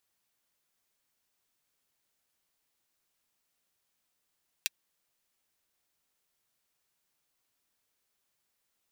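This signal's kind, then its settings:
closed synth hi-hat, high-pass 2,500 Hz, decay 0.03 s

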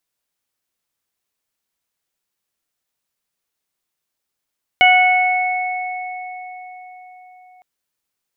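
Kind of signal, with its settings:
harmonic partials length 2.81 s, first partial 735 Hz, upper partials −10.5/2/−5 dB, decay 4.91 s, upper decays 1.67/3.51/0.82 s, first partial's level −11 dB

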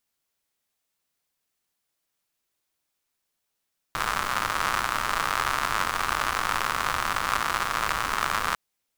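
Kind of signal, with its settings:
rain-like ticks over hiss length 4.60 s, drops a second 140, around 1,200 Hz, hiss −10.5 dB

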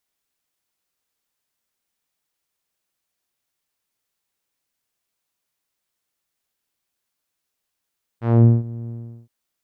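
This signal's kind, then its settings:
subtractive voice saw A#2 12 dB per octave, low-pass 260 Hz, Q 0.71, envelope 3 octaves, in 0.24 s, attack 238 ms, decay 0.18 s, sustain −20 dB, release 0.39 s, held 0.68 s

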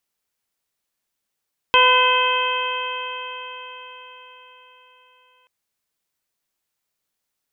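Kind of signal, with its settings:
stiff-string partials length 3.73 s, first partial 502 Hz, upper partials 6/−2/−6/4/2.5 dB, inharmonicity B 0.0023, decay 4.77 s, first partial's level −19.5 dB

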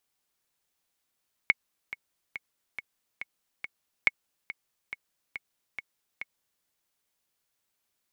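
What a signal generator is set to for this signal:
click track 140 BPM, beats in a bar 6, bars 2, 2,200 Hz, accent 15.5 dB −7 dBFS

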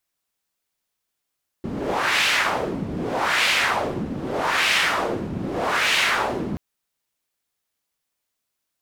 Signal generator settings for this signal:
wind from filtered noise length 4.93 s, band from 200 Hz, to 2,600 Hz, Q 1.7, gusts 4, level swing 9 dB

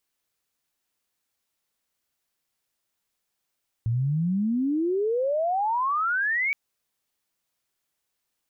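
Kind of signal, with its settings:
glide logarithmic 110 Hz → 2,300 Hz −21.5 dBFS → −22 dBFS 2.67 s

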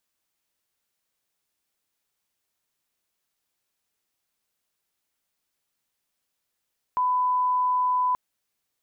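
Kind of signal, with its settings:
line-up tone −20 dBFS 1.18 s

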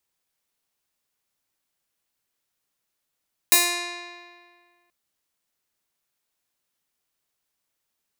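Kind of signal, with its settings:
Karplus-Strong string F4, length 1.38 s, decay 1.88 s, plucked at 0.23, bright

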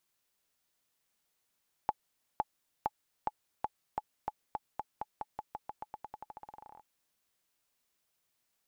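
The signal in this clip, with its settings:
bouncing ball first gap 0.51 s, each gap 0.9, 851 Hz, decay 38 ms −16.5 dBFS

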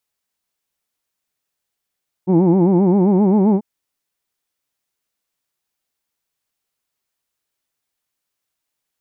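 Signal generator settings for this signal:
vowel by formant synthesis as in who'd, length 1.34 s, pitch 174 Hz, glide +3 semitones, vibrato 7.6 Hz, vibrato depth 1.4 semitones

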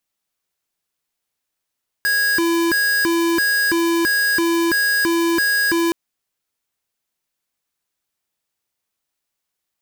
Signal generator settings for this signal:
siren hi-lo 336–1,650 Hz 1.5 per second square −17.5 dBFS 3.87 s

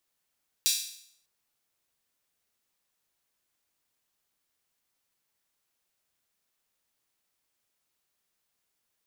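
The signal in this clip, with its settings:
open synth hi-hat length 0.60 s, high-pass 4,000 Hz, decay 0.65 s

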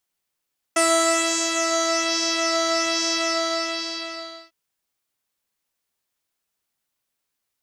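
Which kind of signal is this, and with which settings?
subtractive patch with pulse-width modulation E5, sub −9 dB, noise −14 dB, filter lowpass, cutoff 4,400 Hz, Q 4.3, filter envelope 1 octave, filter decay 1.34 s, filter sustain 35%, attack 7.4 ms, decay 0.72 s, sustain −4.5 dB, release 1.35 s, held 2.40 s, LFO 1.2 Hz, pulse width 15%, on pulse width 10%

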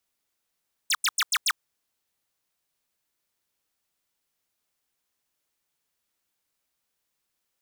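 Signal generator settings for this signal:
repeated falling chirps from 10,000 Hz, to 1,000 Hz, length 0.05 s square, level −22.5 dB, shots 5, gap 0.09 s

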